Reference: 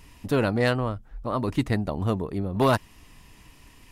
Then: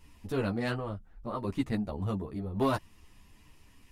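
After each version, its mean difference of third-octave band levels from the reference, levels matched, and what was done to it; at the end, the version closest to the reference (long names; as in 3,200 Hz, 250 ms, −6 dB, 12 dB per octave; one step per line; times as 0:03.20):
2.0 dB: low-shelf EQ 340 Hz +3 dB
string-ensemble chorus
level −6 dB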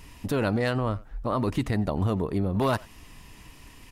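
3.5 dB: brickwall limiter −19.5 dBFS, peak gain reduction 7.5 dB
far-end echo of a speakerphone 90 ms, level −19 dB
level +3 dB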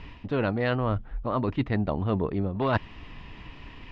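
6.5 dB: low-pass filter 3,600 Hz 24 dB per octave
reversed playback
downward compressor 6 to 1, threshold −31 dBFS, peak gain reduction 14 dB
reversed playback
level +8 dB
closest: first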